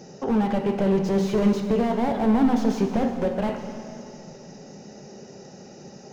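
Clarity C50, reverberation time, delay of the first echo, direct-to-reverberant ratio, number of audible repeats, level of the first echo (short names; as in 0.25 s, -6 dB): 6.0 dB, 2.5 s, none, 5.0 dB, none, none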